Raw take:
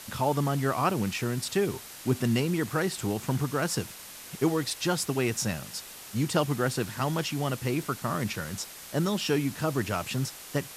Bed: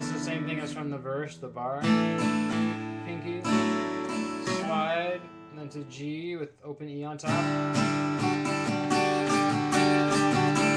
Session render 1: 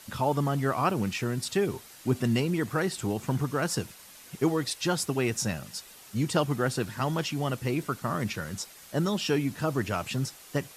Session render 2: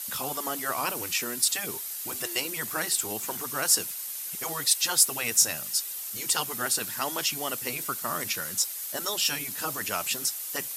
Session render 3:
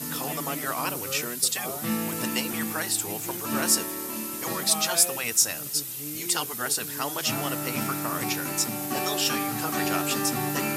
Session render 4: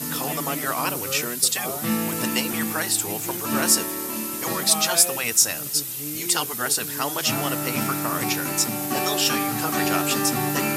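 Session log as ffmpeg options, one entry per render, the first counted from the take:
ffmpeg -i in.wav -af "afftdn=noise_reduction=7:noise_floor=-45" out.wav
ffmpeg -i in.wav -af "afftfilt=real='re*lt(hypot(re,im),0.282)':imag='im*lt(hypot(re,im),0.282)':win_size=1024:overlap=0.75,aemphasis=mode=production:type=riaa" out.wav
ffmpeg -i in.wav -i bed.wav -filter_complex "[1:a]volume=-5dB[link_01];[0:a][link_01]amix=inputs=2:normalize=0" out.wav
ffmpeg -i in.wav -af "volume=4dB,alimiter=limit=-3dB:level=0:latency=1" out.wav

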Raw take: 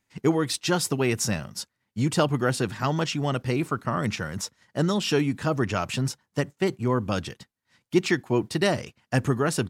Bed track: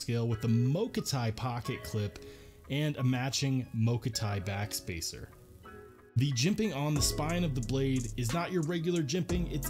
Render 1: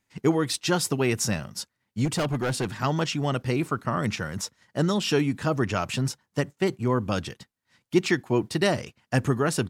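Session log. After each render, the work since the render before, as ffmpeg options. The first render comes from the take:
ffmpeg -i in.wav -filter_complex "[0:a]asettb=1/sr,asplit=3[link_01][link_02][link_03];[link_01]atrim=end=2.054[link_04];[link_02]atrim=start=2.05:end=2.83,asetpts=PTS-STARTPTS,afade=type=in:duration=0.004:curve=qsin,afade=type=out:start_time=0.776:duration=0.004:curve=qsin,volume=22dB,asoftclip=hard,volume=-22dB[link_05];[link_03]atrim=start=2.826[link_06];[link_04][link_05]acrossfade=duration=0.004:curve1=hsin:curve2=qsin[link_07];[link_07][link_06]acrossfade=duration=0.004:curve1=qsin:curve2=hsin" out.wav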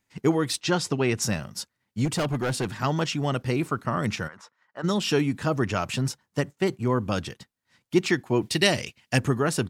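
ffmpeg -i in.wav -filter_complex "[0:a]asettb=1/sr,asplit=3[link_01][link_02][link_03];[link_01]atrim=end=0.614[link_04];[link_02]atrim=start=0.61:end=1.22,asetpts=PTS-STARTPTS,afade=type=in:duration=0.004:curve=qsin,afade=type=out:start_time=0.606:duration=0.004:curve=qsin,lowpass=6600[link_05];[link_03]atrim=start=1.216[link_06];[link_04][link_05]acrossfade=duration=0.004:curve1=hsin:curve2=qsin[link_07];[link_07][link_06]acrossfade=duration=0.004:curve1=qsin:curve2=hsin,asplit=3[link_08][link_09][link_10];[link_08]afade=type=out:start_time=4.27:duration=0.02[link_11];[link_09]bandpass=frequency=1200:width_type=q:width=1.6,afade=type=in:start_time=4.27:duration=0.02,afade=type=out:start_time=4.83:duration=0.02[link_12];[link_10]afade=type=in:start_time=4.83:duration=0.02[link_13];[link_11][link_12][link_13]amix=inputs=3:normalize=0,asplit=3[link_14][link_15][link_16];[link_14]afade=type=out:start_time=8.41:duration=0.02[link_17];[link_15]highshelf=frequency=1800:width_type=q:width=1.5:gain=6.5,afade=type=in:start_time=8.41:duration=0.02,afade=type=out:start_time=9.17:duration=0.02[link_18];[link_16]afade=type=in:start_time=9.17:duration=0.02[link_19];[link_17][link_18][link_19]amix=inputs=3:normalize=0" out.wav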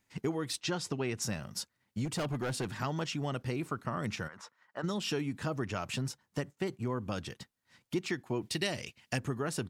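ffmpeg -i in.wav -af "acompressor=threshold=-36dB:ratio=2.5" out.wav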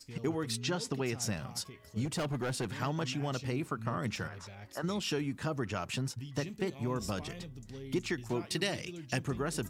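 ffmpeg -i in.wav -i bed.wav -filter_complex "[1:a]volume=-14.5dB[link_01];[0:a][link_01]amix=inputs=2:normalize=0" out.wav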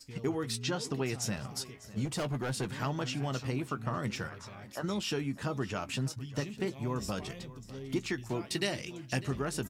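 ffmpeg -i in.wav -filter_complex "[0:a]asplit=2[link_01][link_02];[link_02]adelay=15,volume=-11.5dB[link_03];[link_01][link_03]amix=inputs=2:normalize=0,aecho=1:1:600:0.126" out.wav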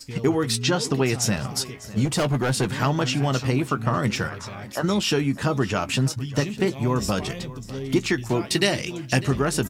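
ffmpeg -i in.wav -af "volume=11.5dB" out.wav

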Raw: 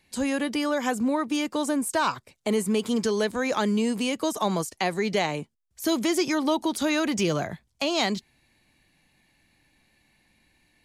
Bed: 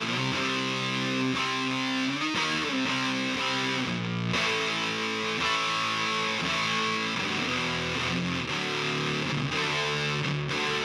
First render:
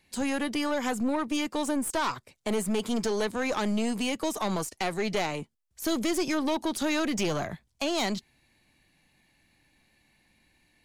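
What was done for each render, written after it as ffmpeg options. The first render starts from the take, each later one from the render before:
ffmpeg -i in.wav -af "aeval=exprs='(tanh(12.6*val(0)+0.4)-tanh(0.4))/12.6':channel_layout=same" out.wav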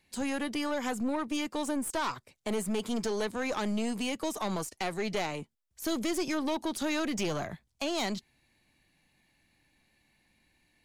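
ffmpeg -i in.wav -af "volume=-3.5dB" out.wav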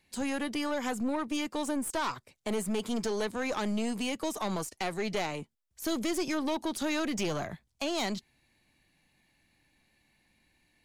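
ffmpeg -i in.wav -af anull out.wav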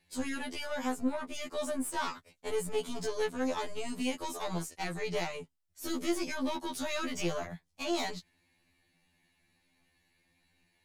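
ffmpeg -i in.wav -af "afftfilt=real='re*2*eq(mod(b,4),0)':imag='im*2*eq(mod(b,4),0)':win_size=2048:overlap=0.75" out.wav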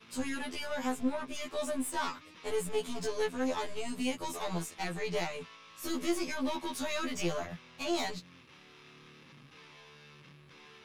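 ffmpeg -i in.wav -i bed.wav -filter_complex "[1:a]volume=-27dB[link_01];[0:a][link_01]amix=inputs=2:normalize=0" out.wav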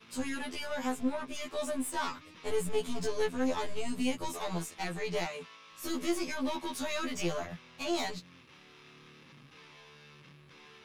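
ffmpeg -i in.wav -filter_complex "[0:a]asettb=1/sr,asplit=3[link_01][link_02][link_03];[link_01]atrim=end=2.114[link_04];[link_02]atrim=start=2.11:end=4.29,asetpts=PTS-STARTPTS,afade=type=in:duration=0.004:curve=qsin,afade=type=out:start_time=2.176:duration=0.004:curve=qsin,lowshelf=frequency=200:gain=6[link_05];[link_03]atrim=start=4.286[link_06];[link_04][link_05]acrossfade=duration=0.004:curve1=hsin:curve2=qsin[link_07];[link_07][link_06]acrossfade=duration=0.004:curve1=qsin:curve2=hsin,asettb=1/sr,asplit=3[link_08][link_09][link_10];[link_08]atrim=end=5.264[link_11];[link_09]atrim=start=5.26:end=5.72,asetpts=PTS-STARTPTS,afade=type=in:duration=0.004:curve=qsin,afade=type=out:start_time=0.456:duration=0.004:curve=qsin,highpass=frequency=180:poles=1[link_12];[link_10]atrim=start=5.716[link_13];[link_11][link_12]acrossfade=duration=0.004:curve1=hsin:curve2=qsin[link_14];[link_14][link_13]acrossfade=duration=0.004:curve1=qsin:curve2=hsin" out.wav

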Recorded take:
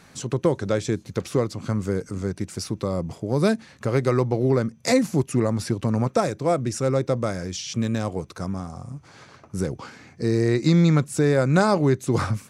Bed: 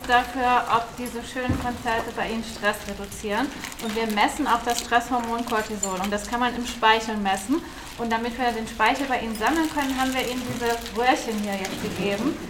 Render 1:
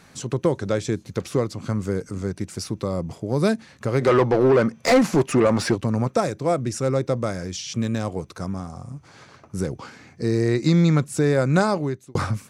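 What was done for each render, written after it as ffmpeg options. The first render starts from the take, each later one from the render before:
ffmpeg -i in.wav -filter_complex "[0:a]asplit=3[link_01][link_02][link_03];[link_01]afade=type=out:start_time=4:duration=0.02[link_04];[link_02]asplit=2[link_05][link_06];[link_06]highpass=frequency=720:poles=1,volume=22dB,asoftclip=type=tanh:threshold=-7.5dB[link_07];[link_05][link_07]amix=inputs=2:normalize=0,lowpass=frequency=2000:poles=1,volume=-6dB,afade=type=in:start_time=4:duration=0.02,afade=type=out:start_time=5.75:duration=0.02[link_08];[link_03]afade=type=in:start_time=5.75:duration=0.02[link_09];[link_04][link_08][link_09]amix=inputs=3:normalize=0,asplit=2[link_10][link_11];[link_10]atrim=end=12.15,asetpts=PTS-STARTPTS,afade=type=out:start_time=11.58:duration=0.57[link_12];[link_11]atrim=start=12.15,asetpts=PTS-STARTPTS,afade=type=in:duration=0.004:curve=hsin[link_13];[link_12][link_13]concat=n=2:v=0:a=1" out.wav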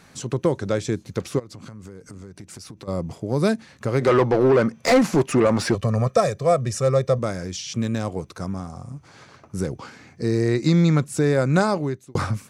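ffmpeg -i in.wav -filter_complex "[0:a]asplit=3[link_01][link_02][link_03];[link_01]afade=type=out:start_time=1.38:duration=0.02[link_04];[link_02]acompressor=threshold=-35dB:ratio=16:attack=3.2:release=140:knee=1:detection=peak,afade=type=in:start_time=1.38:duration=0.02,afade=type=out:start_time=2.87:duration=0.02[link_05];[link_03]afade=type=in:start_time=2.87:duration=0.02[link_06];[link_04][link_05][link_06]amix=inputs=3:normalize=0,asettb=1/sr,asplit=3[link_07][link_08][link_09];[link_07]atrim=end=5.744[link_10];[link_08]atrim=start=5.74:end=7.19,asetpts=PTS-STARTPTS,afade=type=in:duration=0.004:curve=qsin,afade=type=out:start_time=1.446:duration=0.004:curve=qsin,aecho=1:1:1.7:0.77,atrim=end_sample=63945[link_11];[link_09]atrim=start=7.186[link_12];[link_10][link_11]acrossfade=duration=0.004:curve1=hsin:curve2=qsin[link_13];[link_13][link_12]acrossfade=duration=0.004:curve1=qsin:curve2=hsin" out.wav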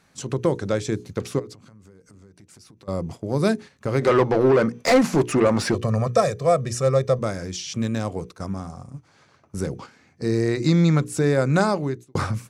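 ffmpeg -i in.wav -af "bandreject=frequency=60:width_type=h:width=6,bandreject=frequency=120:width_type=h:width=6,bandreject=frequency=180:width_type=h:width=6,bandreject=frequency=240:width_type=h:width=6,bandreject=frequency=300:width_type=h:width=6,bandreject=frequency=360:width_type=h:width=6,bandreject=frequency=420:width_type=h:width=6,bandreject=frequency=480:width_type=h:width=6,agate=range=-9dB:threshold=-36dB:ratio=16:detection=peak" out.wav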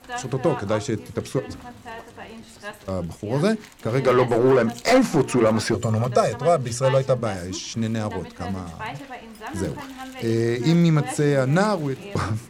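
ffmpeg -i in.wav -i bed.wav -filter_complex "[1:a]volume=-12.5dB[link_01];[0:a][link_01]amix=inputs=2:normalize=0" out.wav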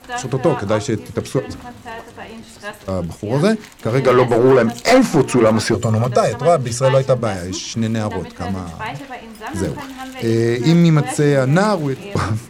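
ffmpeg -i in.wav -af "volume=5.5dB,alimiter=limit=-3dB:level=0:latency=1" out.wav

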